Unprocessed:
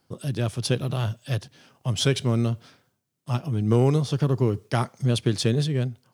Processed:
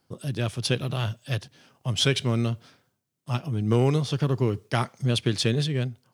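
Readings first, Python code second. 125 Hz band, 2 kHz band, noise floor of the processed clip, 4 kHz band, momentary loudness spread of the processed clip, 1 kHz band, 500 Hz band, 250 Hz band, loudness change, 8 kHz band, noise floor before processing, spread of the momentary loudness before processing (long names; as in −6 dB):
−2.0 dB, +2.5 dB, −76 dBFS, +2.5 dB, 9 LU, −0.5 dB, −1.5 dB, −2.0 dB, −1.0 dB, −0.5 dB, −74 dBFS, 9 LU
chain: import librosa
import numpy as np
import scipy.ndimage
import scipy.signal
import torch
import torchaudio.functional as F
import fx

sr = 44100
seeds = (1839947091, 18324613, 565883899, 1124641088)

y = fx.dynamic_eq(x, sr, hz=2600.0, q=0.72, threshold_db=-42.0, ratio=4.0, max_db=6)
y = F.gain(torch.from_numpy(y), -2.0).numpy()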